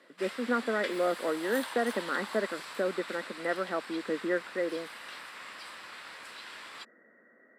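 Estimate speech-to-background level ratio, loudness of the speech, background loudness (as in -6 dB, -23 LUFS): 9.5 dB, -32.5 LUFS, -42.0 LUFS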